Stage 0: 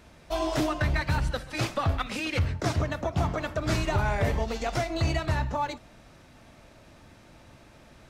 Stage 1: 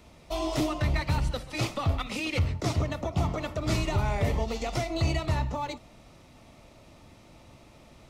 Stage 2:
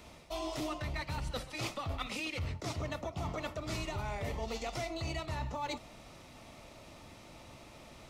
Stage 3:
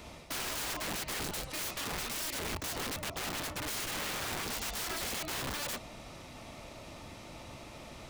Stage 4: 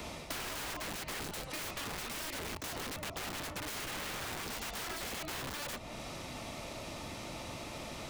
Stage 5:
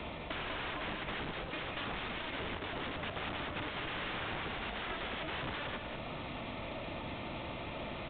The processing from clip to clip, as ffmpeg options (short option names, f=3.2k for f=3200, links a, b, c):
-filter_complex "[0:a]equalizer=f=1.6k:w=6.9:g=-14.5,acrossover=split=460|1400[a][b][c];[b]alimiter=level_in=5.5dB:limit=-24dB:level=0:latency=1,volume=-5.5dB[d];[a][d][c]amix=inputs=3:normalize=0"
-af "lowshelf=f=420:g=-5.5,areverse,acompressor=threshold=-38dB:ratio=6,areverse,volume=3dB"
-af "aeval=exprs='(mod(70.8*val(0)+1,2)-1)/70.8':c=same,volume=5dB"
-filter_complex "[0:a]acrossover=split=120|3200[a][b][c];[a]acompressor=threshold=-58dB:ratio=4[d];[b]acompressor=threshold=-48dB:ratio=4[e];[c]acompressor=threshold=-50dB:ratio=4[f];[d][e][f]amix=inputs=3:normalize=0,volume=6.5dB"
-filter_complex "[0:a]asplit=2[a][b];[b]aecho=0:1:196:0.501[c];[a][c]amix=inputs=2:normalize=0,aresample=8000,aresample=44100,volume=1.5dB"